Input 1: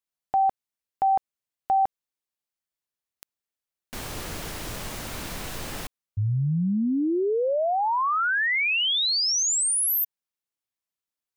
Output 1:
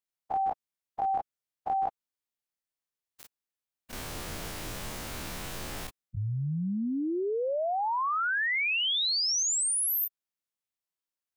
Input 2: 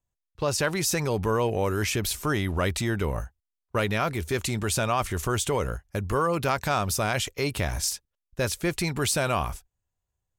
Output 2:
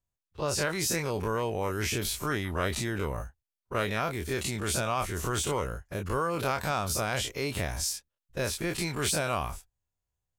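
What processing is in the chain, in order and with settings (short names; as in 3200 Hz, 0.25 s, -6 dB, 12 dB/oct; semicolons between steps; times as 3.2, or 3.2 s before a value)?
spectral dilation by 60 ms; gain -7.5 dB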